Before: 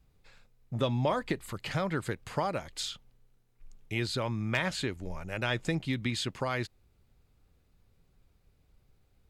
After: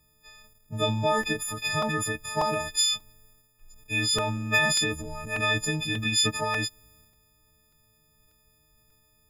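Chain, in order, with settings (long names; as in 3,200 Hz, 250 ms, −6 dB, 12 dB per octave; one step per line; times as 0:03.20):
every partial snapped to a pitch grid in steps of 6 semitones
transient designer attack +1 dB, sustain +8 dB
regular buffer underruns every 0.59 s, samples 128, repeat, from 0:00.64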